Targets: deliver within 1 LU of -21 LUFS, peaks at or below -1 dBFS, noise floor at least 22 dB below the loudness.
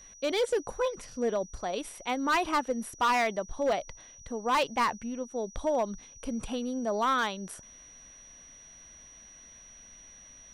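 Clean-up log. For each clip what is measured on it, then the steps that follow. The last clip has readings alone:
clipped 1.5%; flat tops at -21.5 dBFS; steady tone 5800 Hz; tone level -50 dBFS; loudness -30.5 LUFS; peak -21.5 dBFS; loudness target -21.0 LUFS
-> clip repair -21.5 dBFS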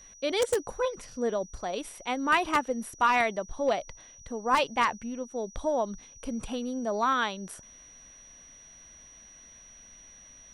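clipped 0.0%; steady tone 5800 Hz; tone level -50 dBFS
-> notch 5800 Hz, Q 30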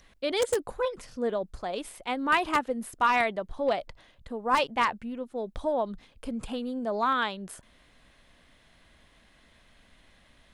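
steady tone none; loudness -29.5 LUFS; peak -12.5 dBFS; loudness target -21.0 LUFS
-> gain +8.5 dB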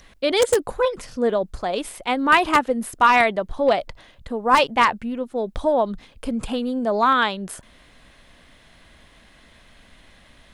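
loudness -21.0 LUFS; peak -4.0 dBFS; noise floor -53 dBFS

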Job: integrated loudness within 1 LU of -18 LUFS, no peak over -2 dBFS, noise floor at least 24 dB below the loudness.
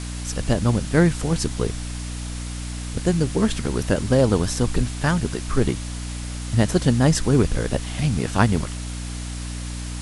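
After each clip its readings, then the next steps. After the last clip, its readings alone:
hum 60 Hz; harmonics up to 300 Hz; hum level -28 dBFS; noise floor -30 dBFS; noise floor target -47 dBFS; loudness -23.0 LUFS; peak -2.0 dBFS; loudness target -18.0 LUFS
-> notches 60/120/180/240/300 Hz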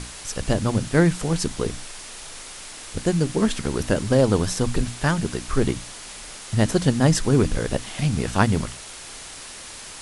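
hum none; noise floor -39 dBFS; noise floor target -47 dBFS
-> denoiser 8 dB, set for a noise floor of -39 dBFS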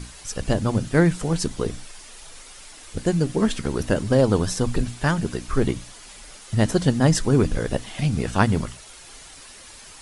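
noise floor -44 dBFS; noise floor target -47 dBFS
-> denoiser 6 dB, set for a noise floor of -44 dBFS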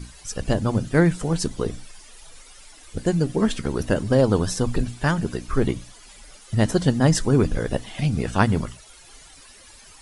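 noise floor -48 dBFS; loudness -23.0 LUFS; peak -3.0 dBFS; loudness target -18.0 LUFS
-> gain +5 dB; limiter -2 dBFS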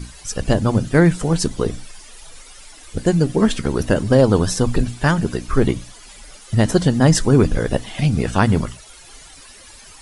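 loudness -18.0 LUFS; peak -2.0 dBFS; noise floor -43 dBFS

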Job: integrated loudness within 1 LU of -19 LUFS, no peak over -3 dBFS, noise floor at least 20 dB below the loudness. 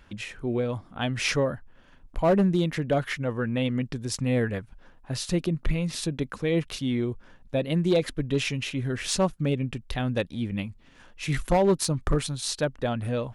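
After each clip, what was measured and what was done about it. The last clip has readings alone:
clipped 0.5%; flat tops at -15.5 dBFS; loudness -27.5 LUFS; peak -15.5 dBFS; loudness target -19.0 LUFS
-> clip repair -15.5 dBFS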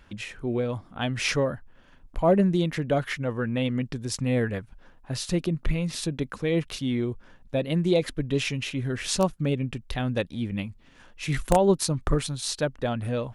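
clipped 0.0%; loudness -27.0 LUFS; peak -6.5 dBFS; loudness target -19.0 LUFS
-> gain +8 dB; limiter -3 dBFS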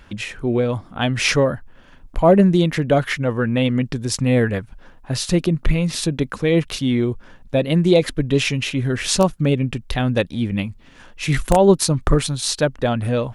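loudness -19.5 LUFS; peak -3.0 dBFS; noise floor -47 dBFS

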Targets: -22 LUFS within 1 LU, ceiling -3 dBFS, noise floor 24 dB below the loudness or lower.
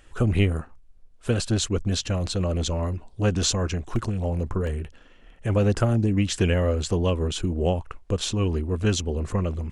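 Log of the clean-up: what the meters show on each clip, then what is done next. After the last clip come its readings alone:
dropouts 2; longest dropout 1.5 ms; loudness -25.5 LUFS; peak -8.0 dBFS; loudness target -22.0 LUFS
-> interpolate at 3.96/4.67, 1.5 ms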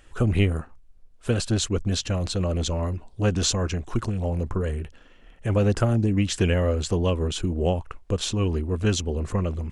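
dropouts 0; loudness -25.5 LUFS; peak -8.0 dBFS; loudness target -22.0 LUFS
-> gain +3.5 dB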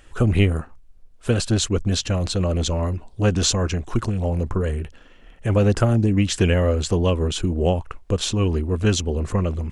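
loudness -22.0 LUFS; peak -4.5 dBFS; noise floor -48 dBFS

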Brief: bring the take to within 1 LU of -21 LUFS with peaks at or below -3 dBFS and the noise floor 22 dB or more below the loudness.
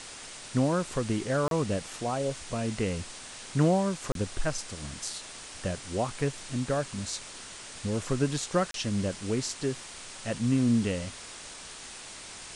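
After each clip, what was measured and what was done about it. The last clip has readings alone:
dropouts 3; longest dropout 32 ms; noise floor -44 dBFS; noise floor target -53 dBFS; loudness -30.5 LUFS; peak -11.5 dBFS; loudness target -21.0 LUFS
-> interpolate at 1.48/4.12/8.71, 32 ms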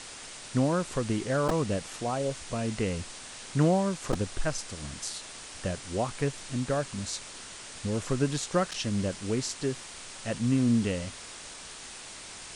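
dropouts 0; noise floor -44 dBFS; noise floor target -53 dBFS
-> denoiser 9 dB, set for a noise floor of -44 dBFS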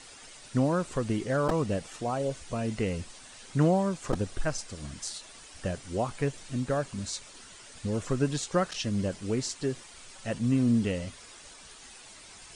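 noise floor -50 dBFS; noise floor target -53 dBFS
-> denoiser 6 dB, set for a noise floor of -50 dBFS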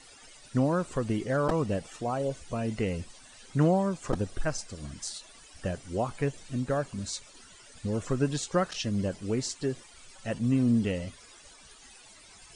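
noise floor -53 dBFS; loudness -30.5 LUFS; peak -11.5 dBFS; loudness target -21.0 LUFS
-> gain +9.5 dB; limiter -3 dBFS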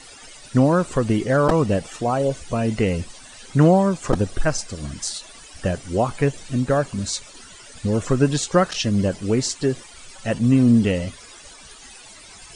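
loudness -21.0 LUFS; peak -3.0 dBFS; noise floor -44 dBFS

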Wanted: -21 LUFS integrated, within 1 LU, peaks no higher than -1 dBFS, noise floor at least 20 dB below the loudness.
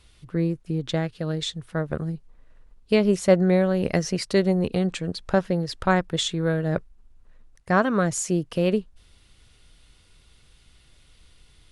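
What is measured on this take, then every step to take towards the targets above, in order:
loudness -24.0 LUFS; peak -5.0 dBFS; loudness target -21.0 LUFS
-> gain +3 dB

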